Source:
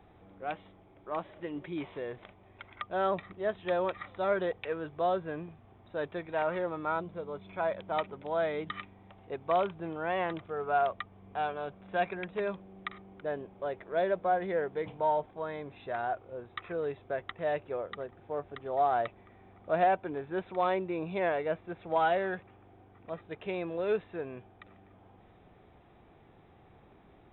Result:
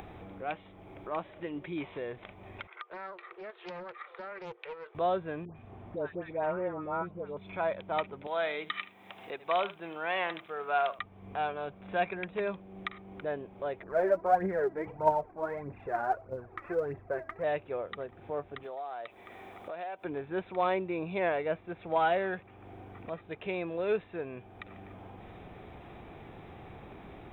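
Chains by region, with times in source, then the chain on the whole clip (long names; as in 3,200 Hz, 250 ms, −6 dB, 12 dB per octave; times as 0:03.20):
0:02.67–0:04.95: downward compressor 2 to 1, threshold −44 dBFS + Chebyshev high-pass with heavy ripple 340 Hz, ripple 9 dB + highs frequency-modulated by the lows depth 0.4 ms
0:05.45–0:07.37: treble cut that deepens with the level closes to 1,600 Hz, closed at −29 dBFS + high-shelf EQ 2,100 Hz −7.5 dB + all-pass dispersion highs, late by 117 ms, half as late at 1,300 Hz
0:08.27–0:10.99: high-pass filter 130 Hz + spectral tilt +3.5 dB per octave + single-tap delay 77 ms −17.5 dB
0:13.83–0:17.44: low-pass filter 1,800 Hz 24 dB per octave + hum removal 325.6 Hz, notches 35 + phase shifter 1.6 Hz, delay 3.7 ms, feedback 60%
0:18.63–0:20.05: bass and treble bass −14 dB, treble +11 dB + downward compressor 3 to 1, threshold −41 dBFS
whole clip: upward compression, threshold −37 dBFS; parametric band 2,400 Hz +4 dB 0.33 octaves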